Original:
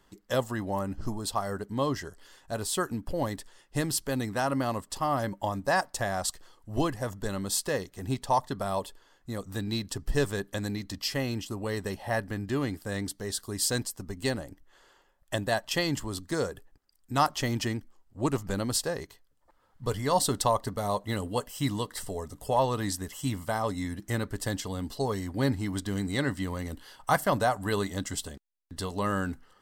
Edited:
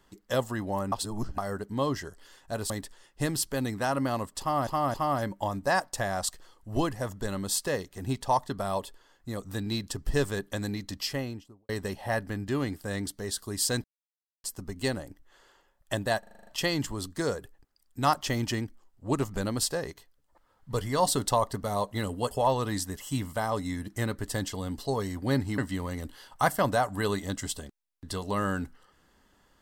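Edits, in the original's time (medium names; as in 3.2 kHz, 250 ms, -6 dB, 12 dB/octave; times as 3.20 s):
0.92–1.38 s: reverse
2.70–3.25 s: delete
4.95–5.22 s: loop, 3 plays
11.00–11.70 s: studio fade out
13.85 s: insert silence 0.60 s
15.60 s: stutter 0.04 s, 8 plays
21.44–22.43 s: delete
25.70–26.26 s: delete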